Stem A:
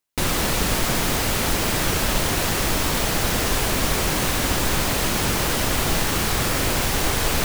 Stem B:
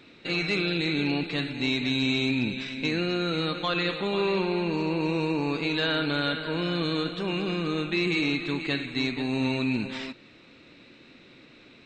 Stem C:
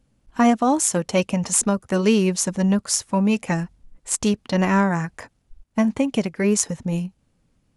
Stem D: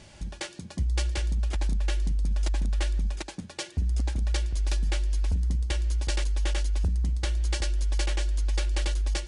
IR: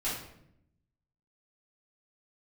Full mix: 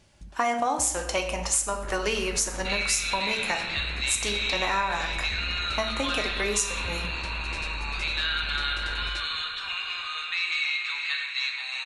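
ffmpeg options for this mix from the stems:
-filter_complex "[0:a]lowpass=f=1.6k:t=q:w=2.4,tremolo=f=75:d=0.889,adelay=1650,volume=-17dB,asplit=2[a][b];[b]volume=-10.5dB[c];[1:a]highpass=f=1.2k:w=0.5412,highpass=f=1.2k:w=1.3066,adelay=2400,volume=0dB,asplit=3[d][e][f];[e]volume=-5.5dB[g];[f]volume=-7dB[h];[2:a]highpass=650,volume=0.5dB,asplit=2[i][j];[j]volume=-7.5dB[k];[3:a]volume=-10dB[l];[4:a]atrim=start_sample=2205[m];[g][k]amix=inputs=2:normalize=0[n];[n][m]afir=irnorm=-1:irlink=0[o];[c][h]amix=inputs=2:normalize=0,aecho=0:1:325|650|975|1300|1625|1950|2275|2600:1|0.56|0.314|0.176|0.0983|0.0551|0.0308|0.0173[p];[a][d][i][l][o][p]amix=inputs=6:normalize=0,acompressor=threshold=-24dB:ratio=3"

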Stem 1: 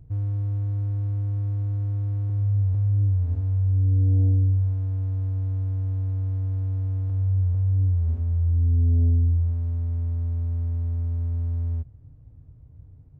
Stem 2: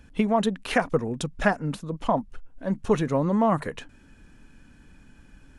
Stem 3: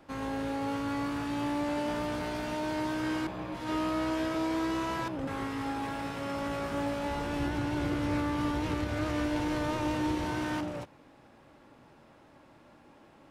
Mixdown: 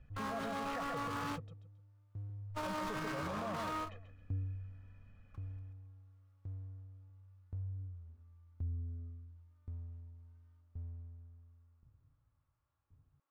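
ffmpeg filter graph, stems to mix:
-filter_complex "[0:a]aeval=exprs='val(0)*pow(10,-28*if(lt(mod(0.93*n/s,1),2*abs(0.93)/1000),1-mod(0.93*n/s,1)/(2*abs(0.93)/1000),(mod(0.93*n/s,1)-2*abs(0.93)/1000)/(1-2*abs(0.93)/1000))/20)':c=same,volume=-16dB[a];[1:a]lowpass=2.6k,aecho=1:1:1.6:0.93,volume=-15dB,asplit=3[b][c][d];[b]atrim=end=1.27,asetpts=PTS-STARTPTS,afade=t=out:st=1.266:d=0.004:c=hsin[e];[c]atrim=start=1.27:end=2.5,asetpts=PTS-STARTPTS,volume=0[f];[d]atrim=start=2.5,asetpts=PTS-STARTPTS,afade=t=in:d=0.004:c=hsin[g];[e][f][g]concat=n=3:v=0:a=1,asplit=3[h][i][j];[i]volume=-4.5dB[k];[2:a]asoftclip=type=tanh:threshold=-32.5dB,asplit=2[l][m];[m]highpass=f=720:p=1,volume=32dB,asoftclip=type=tanh:threshold=-32.5dB[n];[l][n]amix=inputs=2:normalize=0,lowpass=f=8k:p=1,volume=-6dB,equalizer=f=1.2k:t=o:w=0.57:g=11.5,volume=-1.5dB[o];[j]apad=whole_len=586745[p];[o][p]sidechaingate=range=-53dB:threshold=-51dB:ratio=16:detection=peak[q];[k]aecho=0:1:136|272|408|544:1|0.29|0.0841|0.0244[r];[a][h][q][r]amix=inputs=4:normalize=0,alimiter=level_in=8dB:limit=-24dB:level=0:latency=1:release=42,volume=-8dB"

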